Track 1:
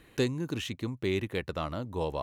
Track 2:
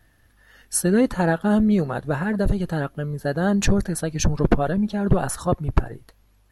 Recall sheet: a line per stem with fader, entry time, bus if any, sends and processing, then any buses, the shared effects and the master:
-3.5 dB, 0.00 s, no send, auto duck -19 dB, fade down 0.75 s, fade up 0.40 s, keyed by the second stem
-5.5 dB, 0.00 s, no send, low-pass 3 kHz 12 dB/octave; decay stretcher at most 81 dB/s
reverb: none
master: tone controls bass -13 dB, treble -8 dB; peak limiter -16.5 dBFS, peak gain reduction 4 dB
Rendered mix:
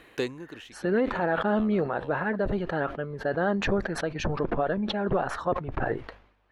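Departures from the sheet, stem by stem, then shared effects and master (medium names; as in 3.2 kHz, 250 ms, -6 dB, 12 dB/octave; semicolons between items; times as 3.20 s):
stem 1 -3.5 dB -> +8.5 dB; stem 2 -5.5 dB -> +0.5 dB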